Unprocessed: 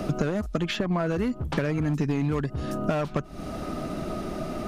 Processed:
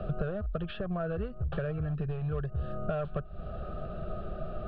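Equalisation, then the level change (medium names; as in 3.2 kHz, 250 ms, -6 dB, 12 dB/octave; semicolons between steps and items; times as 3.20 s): distance through air 450 m; bass shelf 91 Hz +8 dB; static phaser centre 1.4 kHz, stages 8; -3.5 dB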